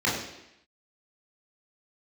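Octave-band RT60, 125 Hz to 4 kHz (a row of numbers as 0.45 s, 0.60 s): 0.70 s, 0.85 s, 0.80 s, 0.85 s, 0.90 s, 0.85 s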